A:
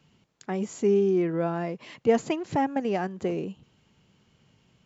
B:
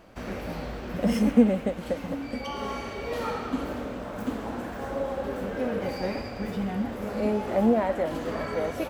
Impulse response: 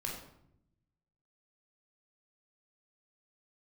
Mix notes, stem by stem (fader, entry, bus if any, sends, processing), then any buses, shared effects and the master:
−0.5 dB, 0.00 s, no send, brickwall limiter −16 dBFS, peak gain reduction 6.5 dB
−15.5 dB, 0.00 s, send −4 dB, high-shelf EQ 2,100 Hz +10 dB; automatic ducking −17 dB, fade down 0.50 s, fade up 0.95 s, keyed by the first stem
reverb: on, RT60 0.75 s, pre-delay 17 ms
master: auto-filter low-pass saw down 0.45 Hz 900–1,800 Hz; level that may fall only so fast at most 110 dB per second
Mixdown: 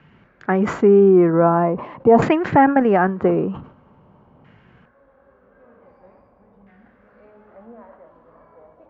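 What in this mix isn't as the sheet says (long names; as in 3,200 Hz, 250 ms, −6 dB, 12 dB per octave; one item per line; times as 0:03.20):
stem A −0.5 dB → +10.5 dB
stem B −15.5 dB → −27.0 dB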